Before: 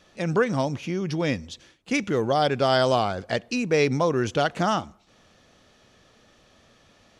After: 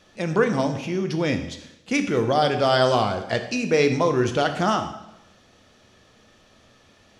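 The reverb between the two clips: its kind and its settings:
dense smooth reverb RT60 0.88 s, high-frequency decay 0.9×, DRR 6 dB
level +1 dB

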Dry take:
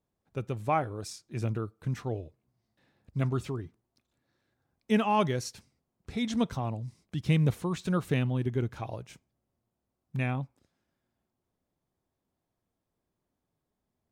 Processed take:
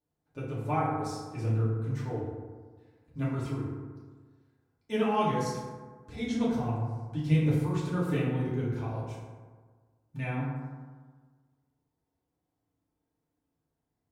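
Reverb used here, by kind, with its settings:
feedback delay network reverb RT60 1.5 s, low-frequency decay 1.05×, high-frequency decay 0.4×, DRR −8.5 dB
level −10 dB

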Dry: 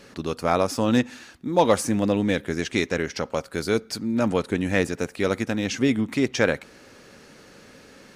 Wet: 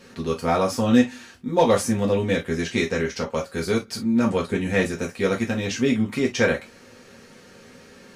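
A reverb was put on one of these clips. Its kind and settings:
reverb whose tail is shaped and stops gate 80 ms falling, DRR −2 dB
level −3.5 dB

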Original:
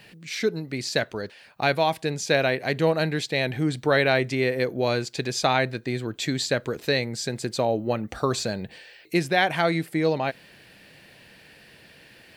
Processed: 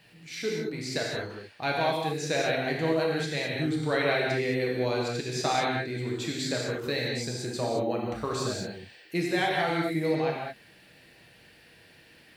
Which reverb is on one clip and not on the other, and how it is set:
reverb whose tail is shaped and stops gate 240 ms flat, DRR −3 dB
level −9 dB

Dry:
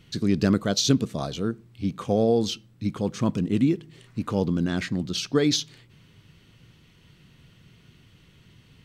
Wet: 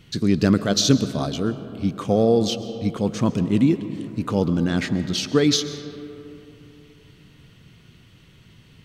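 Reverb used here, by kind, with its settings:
comb and all-pass reverb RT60 3.1 s, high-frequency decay 0.4×, pre-delay 90 ms, DRR 12 dB
level +3.5 dB

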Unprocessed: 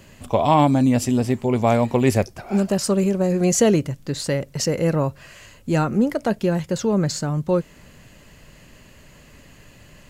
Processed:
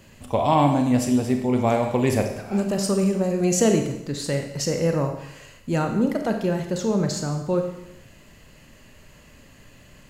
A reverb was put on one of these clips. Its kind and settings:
four-comb reverb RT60 0.84 s, combs from 28 ms, DRR 4.5 dB
level −3.5 dB

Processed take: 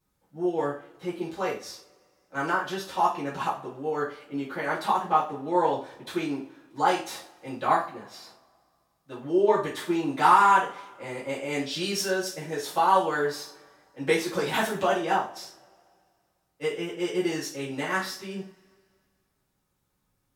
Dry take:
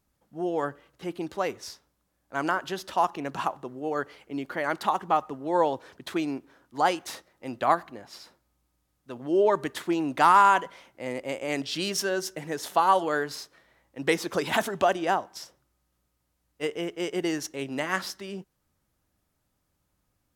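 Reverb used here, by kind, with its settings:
coupled-rooms reverb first 0.36 s, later 2.2 s, from −28 dB, DRR −9 dB
level −9 dB

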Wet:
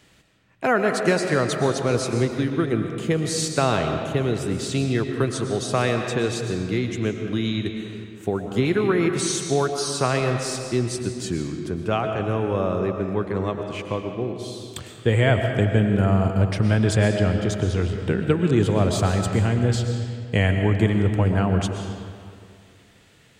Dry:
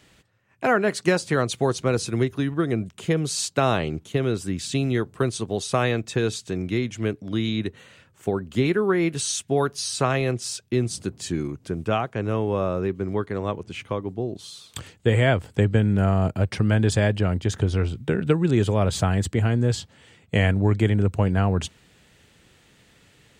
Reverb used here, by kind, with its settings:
comb and all-pass reverb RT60 2.2 s, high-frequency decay 0.7×, pre-delay 80 ms, DRR 4.5 dB

